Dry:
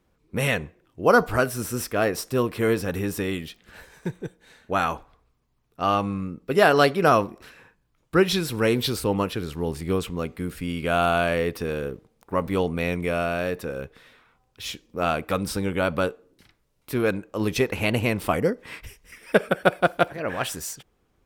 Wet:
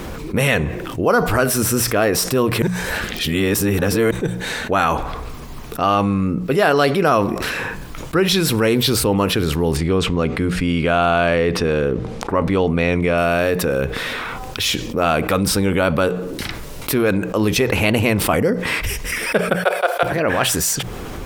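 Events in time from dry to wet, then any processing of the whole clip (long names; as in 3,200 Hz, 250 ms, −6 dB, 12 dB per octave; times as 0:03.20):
0:02.62–0:04.11: reverse
0:09.77–0:13.18: high-frequency loss of the air 70 metres
0:19.56–0:20.03: Butterworth high-pass 390 Hz 72 dB per octave
whole clip: mains-hum notches 60/120/180 Hz; envelope flattener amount 70%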